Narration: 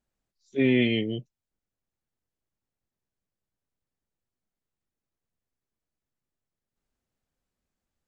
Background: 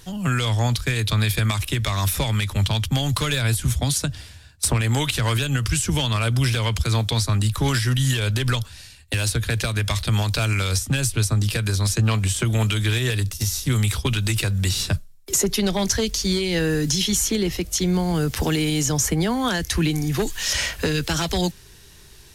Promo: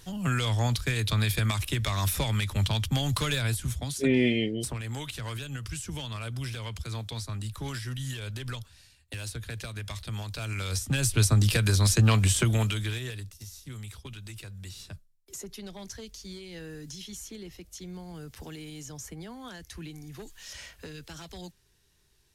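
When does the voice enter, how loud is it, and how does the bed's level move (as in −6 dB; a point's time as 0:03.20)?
3.45 s, −1.5 dB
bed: 0:03.34 −5.5 dB
0:04.08 −14.5 dB
0:10.34 −14.5 dB
0:11.23 −1 dB
0:12.38 −1 dB
0:13.43 −20.5 dB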